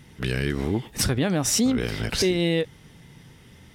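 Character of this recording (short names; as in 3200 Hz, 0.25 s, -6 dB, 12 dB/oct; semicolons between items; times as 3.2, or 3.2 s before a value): noise floor -51 dBFS; spectral tilt -4.0 dB/oct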